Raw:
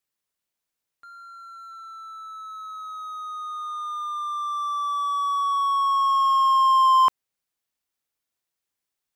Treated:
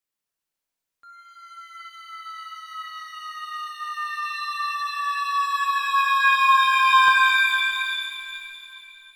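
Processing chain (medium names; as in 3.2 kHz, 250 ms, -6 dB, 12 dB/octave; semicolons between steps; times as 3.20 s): pitch-shifted reverb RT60 2.6 s, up +7 st, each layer -2 dB, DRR 1.5 dB; trim -3.5 dB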